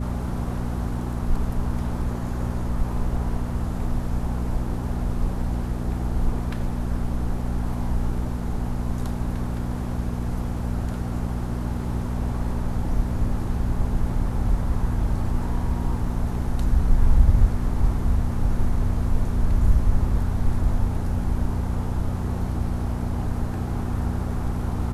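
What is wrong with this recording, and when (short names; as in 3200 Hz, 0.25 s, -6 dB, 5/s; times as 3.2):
hum 60 Hz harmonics 4 -28 dBFS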